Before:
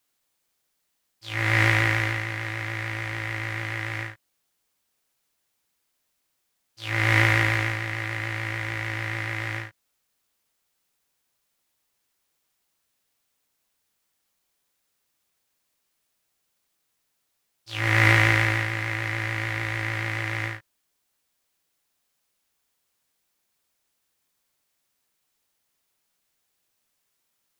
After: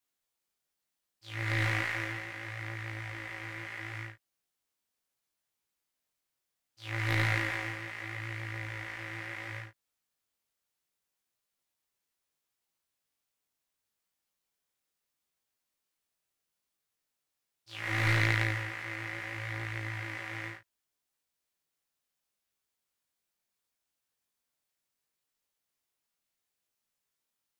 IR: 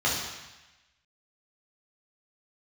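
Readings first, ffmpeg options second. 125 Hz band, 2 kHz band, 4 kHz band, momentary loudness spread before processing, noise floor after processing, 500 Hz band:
-9.0 dB, -10.0 dB, -9.0 dB, 14 LU, under -85 dBFS, -10.0 dB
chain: -af "flanger=delay=17.5:depth=6.7:speed=0.71,aeval=exprs='0.531*(cos(1*acos(clip(val(0)/0.531,-1,1)))-cos(1*PI/2))+0.188*(cos(2*acos(clip(val(0)/0.531,-1,1)))-cos(2*PI/2))+0.0422*(cos(6*acos(clip(val(0)/0.531,-1,1)))-cos(6*PI/2))+0.0266*(cos(8*acos(clip(val(0)/0.531,-1,1)))-cos(8*PI/2))':c=same,volume=0.447"

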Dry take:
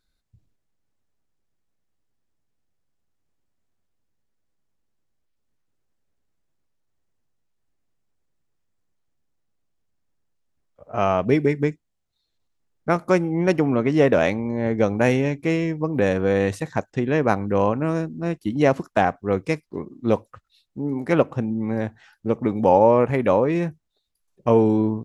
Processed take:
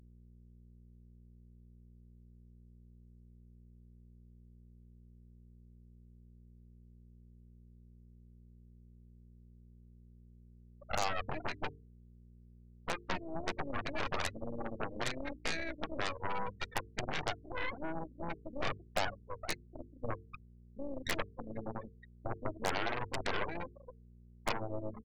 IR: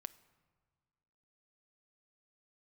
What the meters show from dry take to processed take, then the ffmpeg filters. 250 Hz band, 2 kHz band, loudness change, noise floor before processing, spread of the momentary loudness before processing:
-23.0 dB, -10.0 dB, -18.0 dB, -75 dBFS, 10 LU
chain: -filter_complex "[0:a]flanger=delay=0.4:depth=2.6:regen=47:speed=0.2:shape=triangular,acompressor=threshold=0.0126:ratio=4,bandreject=f=2500:w=8.1,tremolo=f=100:d=0.824,highpass=f=240:w=0.5412,highpass=f=240:w=1.3066,equalizer=f=410:t=q:w=4:g=-6,equalizer=f=970:t=q:w=4:g=6,equalizer=f=1900:t=q:w=4:g=9,equalizer=f=2800:t=q:w=4:g=10,lowpass=f=4600:w=0.5412,lowpass=f=4600:w=1.3066,asplit=2[s0][s1];[s1]adelay=465,lowpass=f=1900:p=1,volume=0.282,asplit=2[s2][s3];[s3]adelay=465,lowpass=f=1900:p=1,volume=0.47,asplit=2[s4][s5];[s5]adelay=465,lowpass=f=1900:p=1,volume=0.47,asplit=2[s6][s7];[s7]adelay=465,lowpass=f=1900:p=1,volume=0.47,asplit=2[s8][s9];[s9]adelay=465,lowpass=f=1900:p=1,volume=0.47[s10];[s2][s4][s6][s8][s10]amix=inputs=5:normalize=0[s11];[s0][s11]amix=inputs=2:normalize=0,afftfilt=real='re*gte(hypot(re,im),0.0251)':imag='im*gte(hypot(re,im),0.0251)':win_size=1024:overlap=0.75,equalizer=f=2900:w=7.5:g=-10,aeval=exprs='val(0)+0.000794*(sin(2*PI*60*n/s)+sin(2*PI*2*60*n/s)/2+sin(2*PI*3*60*n/s)/3+sin(2*PI*4*60*n/s)/4+sin(2*PI*5*60*n/s)/5)':c=same,aeval=exprs='0.0376*(cos(1*acos(clip(val(0)/0.0376,-1,1)))-cos(1*PI/2))+0.00473*(cos(3*acos(clip(val(0)/0.0376,-1,1)))-cos(3*PI/2))+0.000944*(cos(6*acos(clip(val(0)/0.0376,-1,1)))-cos(6*PI/2))+0.00944*(cos(7*acos(clip(val(0)/0.0376,-1,1)))-cos(7*PI/2))+0.0133*(cos(8*acos(clip(val(0)/0.0376,-1,1)))-cos(8*PI/2))':c=same,bandreject=f=50:t=h:w=6,bandreject=f=100:t=h:w=6,bandreject=f=150:t=h:w=6,bandreject=f=200:t=h:w=6,bandreject=f=250:t=h:w=6,bandreject=f=300:t=h:w=6,bandreject=f=350:t=h:w=6,bandreject=f=400:t=h:w=6,bandreject=f=450:t=h:w=6,volume=1.68" -ar 44100 -c:a aac -b:a 96k

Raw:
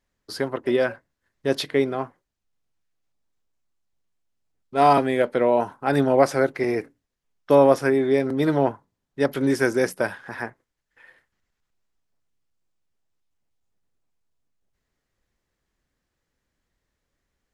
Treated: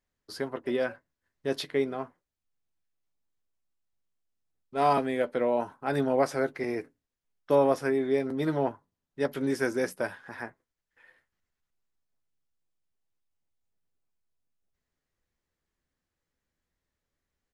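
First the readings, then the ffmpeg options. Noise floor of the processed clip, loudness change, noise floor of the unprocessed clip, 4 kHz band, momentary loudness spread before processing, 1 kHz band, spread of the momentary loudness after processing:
under -85 dBFS, -7.5 dB, -81 dBFS, -7.0 dB, 13 LU, -7.5 dB, 12 LU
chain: -filter_complex "[0:a]asplit=2[s0][s1];[s1]adelay=12,volume=0.282[s2];[s0][s2]amix=inputs=2:normalize=0,volume=0.422"

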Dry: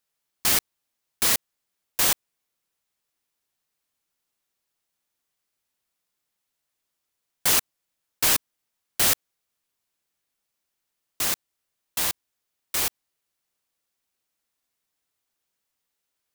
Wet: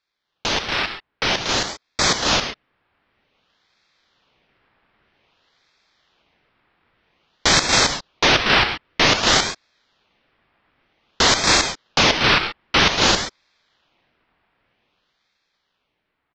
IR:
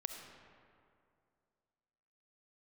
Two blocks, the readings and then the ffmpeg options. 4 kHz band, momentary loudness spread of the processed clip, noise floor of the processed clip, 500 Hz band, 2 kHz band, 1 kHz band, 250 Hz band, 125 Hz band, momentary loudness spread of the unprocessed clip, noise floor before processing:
+13.0 dB, 10 LU, -76 dBFS, +16.0 dB, +14.5 dB, +15.5 dB, +16.0 dB, +16.0 dB, 9 LU, -81 dBFS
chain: -filter_complex "[0:a]tiltshelf=f=760:g=-3.5,alimiter=limit=0.224:level=0:latency=1,dynaudnorm=f=720:g=7:m=5.62,aresample=11025,aeval=exprs='0.562*sin(PI/2*3.98*val(0)/0.562)':c=same,aresample=44100,adynamicsmooth=sensitivity=2.5:basefreq=1800,highpass=190,lowpass=2900,aecho=1:1:236.2|271.1:0.562|0.794[s0];[1:a]atrim=start_sample=2205,atrim=end_sample=3969,asetrate=27783,aresample=44100[s1];[s0][s1]afir=irnorm=-1:irlink=0,aeval=exprs='val(0)*sin(2*PI*1700*n/s+1700*0.75/0.52*sin(2*PI*0.52*n/s))':c=same"

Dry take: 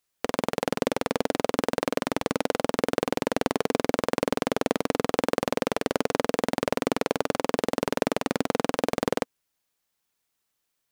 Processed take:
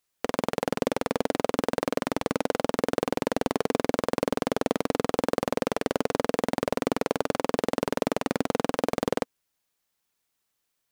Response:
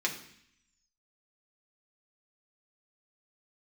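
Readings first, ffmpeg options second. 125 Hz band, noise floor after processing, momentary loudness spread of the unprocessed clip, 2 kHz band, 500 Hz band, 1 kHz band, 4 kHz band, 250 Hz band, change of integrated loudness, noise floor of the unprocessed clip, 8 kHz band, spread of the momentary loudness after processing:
0.0 dB, -79 dBFS, 2 LU, -2.0 dB, -0.5 dB, -1.0 dB, -2.5 dB, -0.5 dB, -0.5 dB, -79 dBFS, -2.0 dB, 2 LU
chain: -af "asoftclip=type=hard:threshold=0.299"

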